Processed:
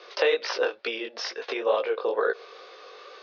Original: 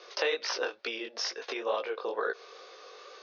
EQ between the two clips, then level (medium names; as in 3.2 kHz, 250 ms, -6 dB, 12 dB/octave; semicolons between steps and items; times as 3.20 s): treble shelf 3 kHz +8 dB; dynamic bell 500 Hz, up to +5 dB, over -42 dBFS, Q 1.8; distance through air 220 m; +4.0 dB